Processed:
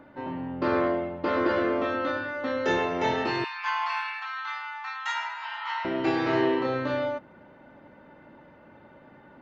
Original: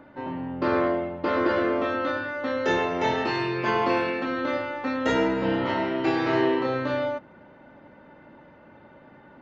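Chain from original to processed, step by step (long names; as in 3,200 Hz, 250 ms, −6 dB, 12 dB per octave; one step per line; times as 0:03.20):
0:03.44–0:05.85: Butterworth high-pass 820 Hz 72 dB per octave
level −1.5 dB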